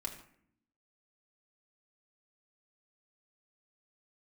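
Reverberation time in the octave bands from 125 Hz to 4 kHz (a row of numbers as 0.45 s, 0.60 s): 0.95 s, 1.1 s, 0.65 s, 0.60 s, 0.60 s, 0.40 s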